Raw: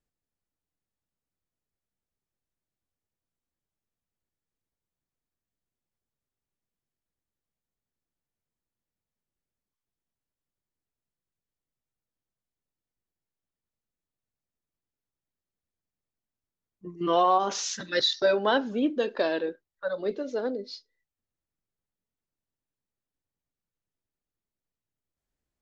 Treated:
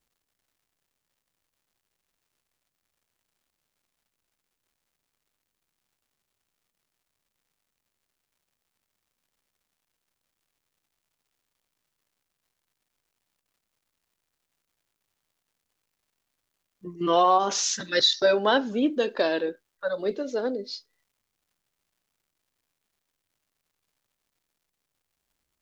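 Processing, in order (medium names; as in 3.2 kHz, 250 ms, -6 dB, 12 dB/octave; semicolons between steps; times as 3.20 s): treble shelf 6.2 kHz +8.5 dB; crackle 290 per s -65 dBFS; trim +2 dB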